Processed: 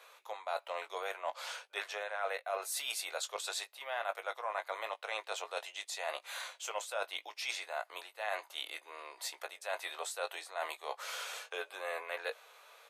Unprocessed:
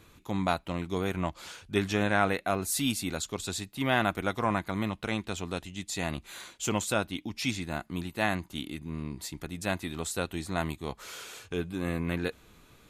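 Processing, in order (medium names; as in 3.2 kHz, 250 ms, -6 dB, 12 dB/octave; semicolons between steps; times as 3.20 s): steep high-pass 520 Hz 48 dB/octave; tilt EQ -1.5 dB/octave; band-stop 7.1 kHz, Q 16; reverse; compression 6:1, threshold -39 dBFS, peak gain reduction 16.5 dB; reverse; doubling 19 ms -10 dB; trim +4 dB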